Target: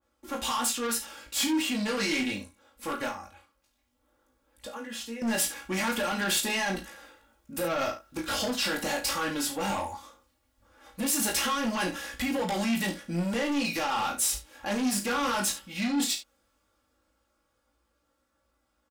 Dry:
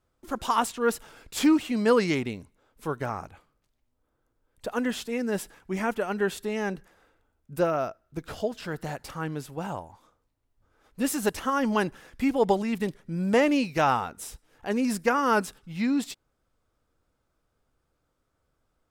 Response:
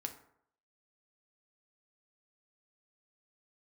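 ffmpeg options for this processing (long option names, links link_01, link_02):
-filter_complex "[0:a]highpass=41,lowshelf=frequency=490:gain=-5.5,aecho=1:1:3.6:0.94,dynaudnorm=framelen=470:gausssize=17:maxgain=10dB,alimiter=limit=-19dB:level=0:latency=1:release=49,asettb=1/sr,asplit=3[link_01][link_02][link_03];[link_01]atrim=end=3.094[link_04];[link_02]atrim=start=3.09:end=5.22,asetpts=PTS-STARTPTS,afade=type=in:duration=0.004:curve=qsin,afade=type=out:start_time=2.126:duration=0.004:curve=qsin,acompressor=threshold=-60dB:ratio=1.5[link_05];[link_03]atrim=start=5.216[link_06];[link_04][link_05]acrossfade=duration=0.004:curve1=hsin:curve2=qsin[link_07];[link_07][link_06]acrossfade=duration=0.004:curve1=qsin:curve2=hsin,flanger=delay=16.5:depth=4.3:speed=0.16,asoftclip=type=tanh:threshold=-30dB,aecho=1:1:35|70:0.376|0.224,adynamicequalizer=threshold=0.00501:dfrequency=2200:dqfactor=0.7:tfrequency=2200:tqfactor=0.7:attack=5:release=100:ratio=0.375:range=3:mode=boostabove:tftype=highshelf,volume=4dB"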